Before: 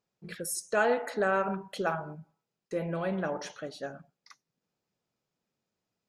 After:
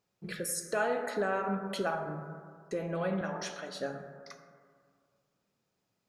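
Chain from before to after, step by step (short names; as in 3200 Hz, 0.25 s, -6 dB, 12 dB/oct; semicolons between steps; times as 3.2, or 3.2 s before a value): 3.21–3.8 HPF 1100 Hz 6 dB/oct; compressor 2:1, threshold -39 dBFS, peak gain reduction 10 dB; plate-style reverb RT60 2 s, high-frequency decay 0.3×, DRR 5.5 dB; gain +3.5 dB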